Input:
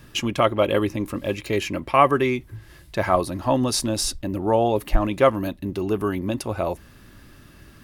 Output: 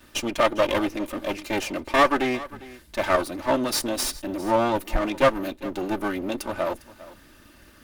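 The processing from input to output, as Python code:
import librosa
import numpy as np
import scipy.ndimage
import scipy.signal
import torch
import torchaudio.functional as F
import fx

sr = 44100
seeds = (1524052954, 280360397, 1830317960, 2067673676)

p1 = fx.lower_of_two(x, sr, delay_ms=3.3)
p2 = fx.low_shelf(p1, sr, hz=230.0, db=-6.0)
y = p2 + fx.echo_single(p2, sr, ms=403, db=-18.5, dry=0)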